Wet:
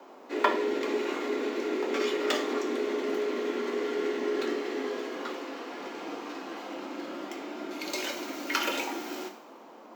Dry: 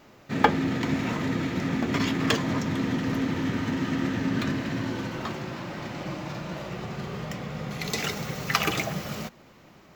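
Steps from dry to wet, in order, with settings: two-slope reverb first 0.48 s, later 1.8 s, DRR 2 dB; band noise 66–920 Hz -45 dBFS; frequency shift +150 Hz; trim -6 dB

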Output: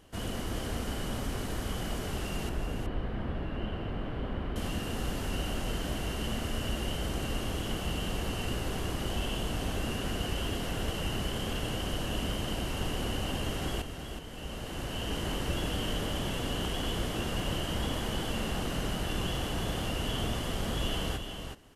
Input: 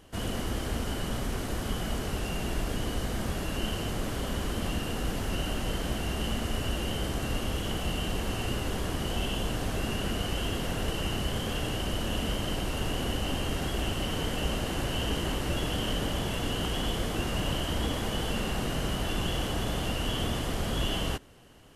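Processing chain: 2.49–4.56 s: distance through air 460 m; 13.82–15.29 s: fade in; delay 371 ms -7 dB; trim -3 dB

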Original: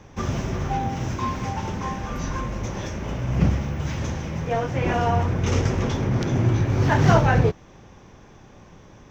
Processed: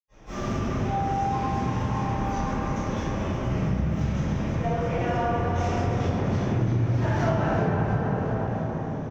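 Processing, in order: frequency-shifting echo 336 ms, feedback 51%, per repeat +36 Hz, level -9.5 dB; reverberation RT60 3.4 s, pre-delay 80 ms; compression 3:1, threshold -32 dBFS, peak gain reduction 10.5 dB; trim +9 dB

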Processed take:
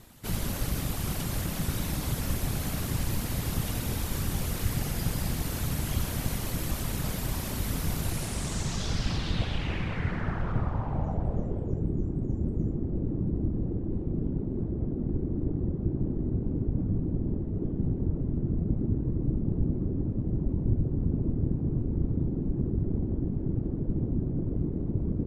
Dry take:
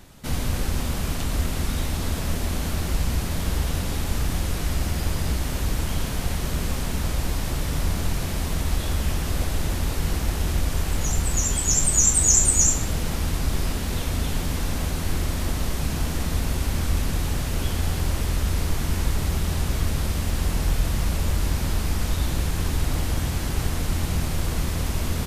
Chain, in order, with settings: whisper effect; low-pass sweep 13 kHz -> 340 Hz, 7.99–11.95 s; trim -5.5 dB

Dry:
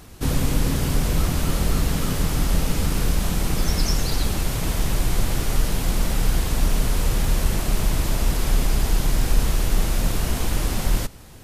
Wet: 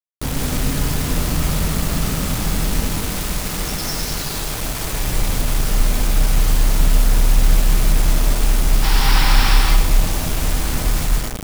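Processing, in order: 2.88–4.91 s: bass shelf 290 Hz -7 dB; 8.83–9.55 s: time-frequency box 740–5800 Hz +12 dB; two-band feedback delay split 820 Hz, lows 580 ms, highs 113 ms, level -9.5 dB; gated-style reverb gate 240 ms rising, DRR -1.5 dB; bit crusher 4-bit; trim -2.5 dB

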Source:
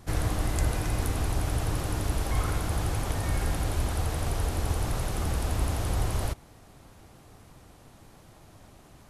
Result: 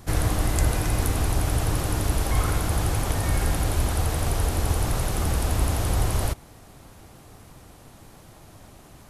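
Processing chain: treble shelf 10 kHz +5.5 dB; trim +4.5 dB

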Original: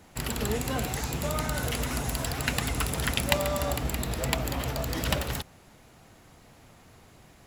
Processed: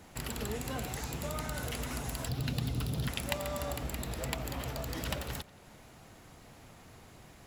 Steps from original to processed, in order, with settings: 2.28–3.08 s: graphic EQ 125/250/1000/2000/4000/8000 Hz +11/+4/-4/-8/+6/-9 dB; compression 1.5:1, threshold -47 dBFS, peak gain reduction 10.5 dB; tape echo 87 ms, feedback 82%, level -21 dB, low-pass 4.5 kHz

